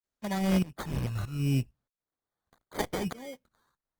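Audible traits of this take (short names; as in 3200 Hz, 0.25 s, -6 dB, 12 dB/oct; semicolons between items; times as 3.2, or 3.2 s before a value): tremolo saw up 1.6 Hz, depth 95%; phasing stages 2, 0.72 Hz, lowest notch 300–1500 Hz; aliases and images of a low sample rate 2700 Hz, jitter 0%; Opus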